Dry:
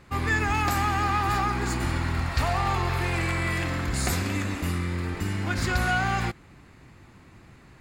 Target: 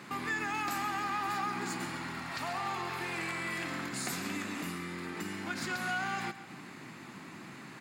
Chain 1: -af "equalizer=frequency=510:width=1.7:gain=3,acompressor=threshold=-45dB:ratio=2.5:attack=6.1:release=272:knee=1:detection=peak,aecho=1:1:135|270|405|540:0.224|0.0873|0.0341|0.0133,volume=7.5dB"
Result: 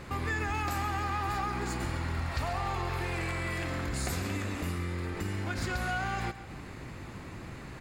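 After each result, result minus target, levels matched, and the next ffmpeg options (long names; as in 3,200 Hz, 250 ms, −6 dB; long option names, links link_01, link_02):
125 Hz band +10.5 dB; 500 Hz band +3.0 dB
-af "equalizer=frequency=510:width=1.7:gain=3,acompressor=threshold=-45dB:ratio=2.5:attack=6.1:release=272:knee=1:detection=peak,highpass=frequency=170:width=0.5412,highpass=frequency=170:width=1.3066,aecho=1:1:135|270|405|540:0.224|0.0873|0.0341|0.0133,volume=7.5dB"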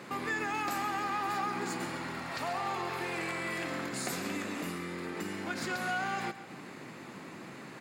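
500 Hz band +4.0 dB
-af "equalizer=frequency=510:width=1.7:gain=-6,acompressor=threshold=-45dB:ratio=2.5:attack=6.1:release=272:knee=1:detection=peak,highpass=frequency=170:width=0.5412,highpass=frequency=170:width=1.3066,aecho=1:1:135|270|405|540:0.224|0.0873|0.0341|0.0133,volume=7.5dB"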